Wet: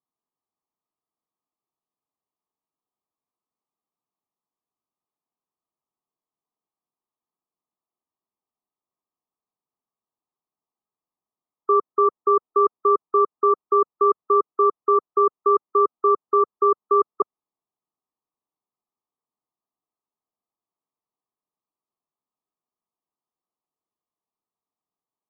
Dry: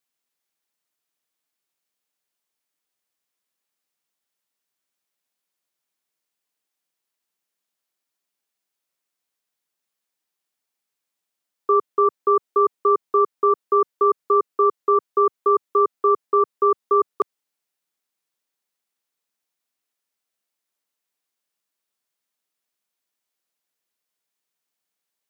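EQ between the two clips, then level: brick-wall FIR low-pass 1.3 kHz; peaking EQ 550 Hz -8 dB 0.28 oct; 0.0 dB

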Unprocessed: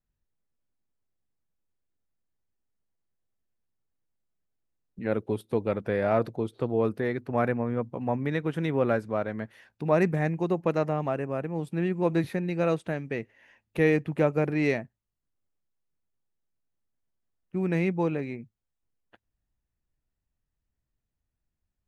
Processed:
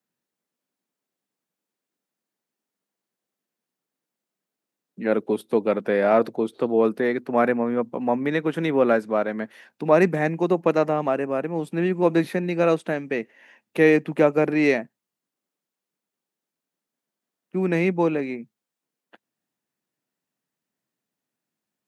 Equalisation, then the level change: high-pass 190 Hz 24 dB/octave; +6.5 dB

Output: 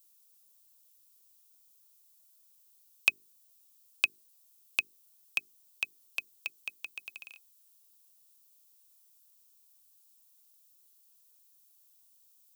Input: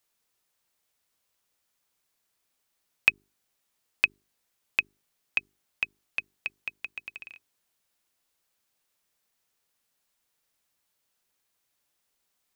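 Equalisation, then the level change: high-pass 91 Hz; RIAA curve recording; peaking EQ 1.9 kHz -13 dB 0.69 oct; -2.5 dB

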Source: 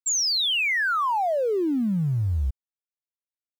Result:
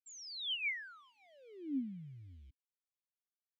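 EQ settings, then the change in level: vowel filter i; peaking EQ 480 Hz -10 dB 2.6 oct; -2.5 dB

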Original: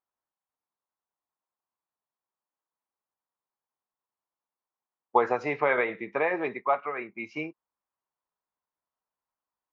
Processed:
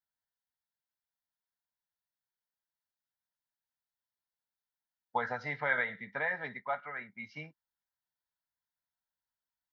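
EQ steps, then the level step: high-order bell 590 Hz -9.5 dB 1.3 oct; static phaser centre 1.7 kHz, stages 8; 0.0 dB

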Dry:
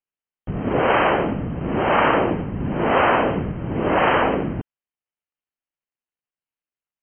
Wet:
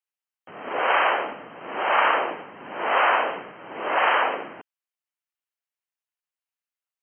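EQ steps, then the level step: high-pass 770 Hz 12 dB/octave; 0.0 dB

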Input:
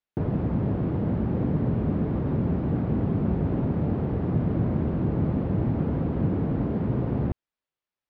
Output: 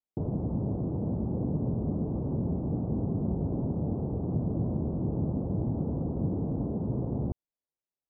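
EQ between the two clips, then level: inverse Chebyshev low-pass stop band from 2.3 kHz, stop band 50 dB; -5.0 dB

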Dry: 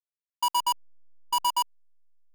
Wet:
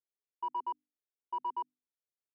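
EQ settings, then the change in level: ladder band-pass 450 Hz, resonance 50%; distance through air 250 m; hum notches 50/100/150/200/250/300 Hz; +8.0 dB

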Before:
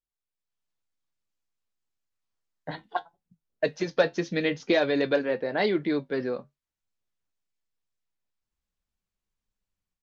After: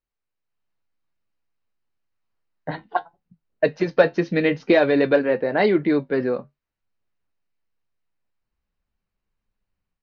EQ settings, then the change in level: distance through air 220 m; band-stop 3.4 kHz, Q 8.9; +7.5 dB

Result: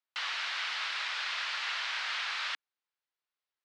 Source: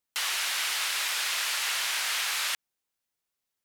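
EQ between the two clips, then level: high-pass 280 Hz 24 dB/octave; four-pole ladder low-pass 5.5 kHz, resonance 30%; peaking EQ 1.3 kHz +9 dB 2.2 oct; -4.5 dB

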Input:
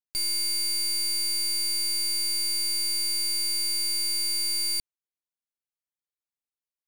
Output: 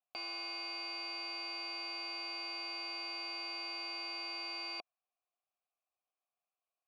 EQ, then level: vowel filter a; high-pass 260 Hz 12 dB/octave; distance through air 210 m; +17.5 dB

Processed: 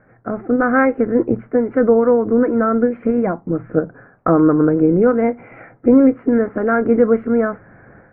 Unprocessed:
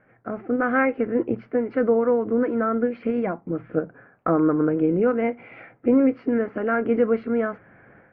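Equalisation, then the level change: low-pass 1.9 kHz 24 dB/octave; distance through air 68 m; bass shelf 81 Hz +9.5 dB; +6.5 dB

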